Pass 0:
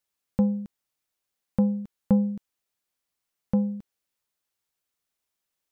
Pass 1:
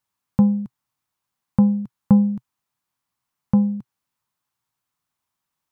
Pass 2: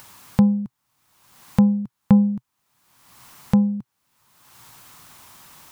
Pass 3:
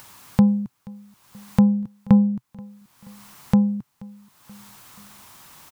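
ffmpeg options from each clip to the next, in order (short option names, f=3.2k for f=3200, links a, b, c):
-af "equalizer=f=125:t=o:w=1:g=12,equalizer=f=250:t=o:w=1:g=4,equalizer=f=500:t=o:w=1:g=-5,equalizer=f=1k:t=o:w=1:g=11"
-af "acompressor=mode=upward:threshold=-20dB:ratio=2.5"
-af "aecho=1:1:480|960|1440:0.0668|0.0348|0.0181"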